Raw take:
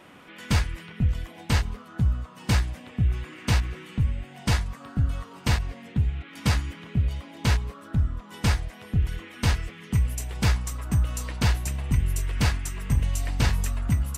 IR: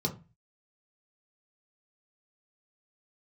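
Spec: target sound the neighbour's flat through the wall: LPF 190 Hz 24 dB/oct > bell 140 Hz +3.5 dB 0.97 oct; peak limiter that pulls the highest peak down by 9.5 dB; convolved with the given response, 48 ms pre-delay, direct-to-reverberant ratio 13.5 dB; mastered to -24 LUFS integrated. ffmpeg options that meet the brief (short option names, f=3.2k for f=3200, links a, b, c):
-filter_complex "[0:a]alimiter=limit=-20dB:level=0:latency=1,asplit=2[a][b];[1:a]atrim=start_sample=2205,adelay=48[c];[b][c]afir=irnorm=-1:irlink=0,volume=-18.5dB[d];[a][d]amix=inputs=2:normalize=0,lowpass=f=190:w=0.5412,lowpass=f=190:w=1.3066,equalizer=f=140:t=o:w=0.97:g=3.5,volume=6.5dB"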